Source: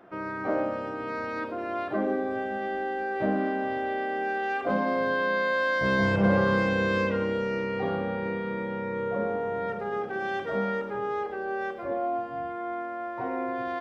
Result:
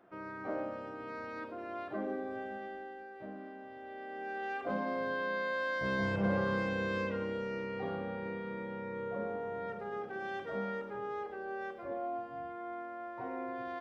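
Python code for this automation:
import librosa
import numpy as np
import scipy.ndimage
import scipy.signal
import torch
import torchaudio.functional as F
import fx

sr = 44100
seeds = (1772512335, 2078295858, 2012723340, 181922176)

y = fx.gain(x, sr, db=fx.line((2.5, -10.0), (3.18, -19.5), (3.72, -19.5), (4.44, -9.0)))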